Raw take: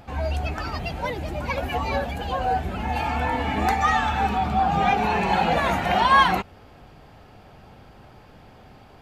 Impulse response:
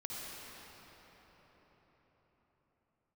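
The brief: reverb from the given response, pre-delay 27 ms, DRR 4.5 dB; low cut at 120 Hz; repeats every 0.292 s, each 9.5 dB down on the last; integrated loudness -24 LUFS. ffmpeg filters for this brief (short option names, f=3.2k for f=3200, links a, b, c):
-filter_complex "[0:a]highpass=120,aecho=1:1:292|584|876|1168:0.335|0.111|0.0365|0.012,asplit=2[a][b];[1:a]atrim=start_sample=2205,adelay=27[c];[b][c]afir=irnorm=-1:irlink=0,volume=-5.5dB[d];[a][d]amix=inputs=2:normalize=0,volume=-2dB"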